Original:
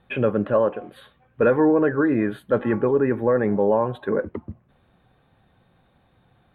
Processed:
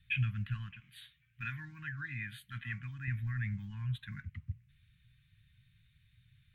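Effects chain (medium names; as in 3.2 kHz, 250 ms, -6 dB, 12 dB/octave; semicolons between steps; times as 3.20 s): elliptic band-stop 130–2100 Hz, stop band 70 dB; 0.80–3.08 s: bass shelf 160 Hz -11.5 dB; trim -1.5 dB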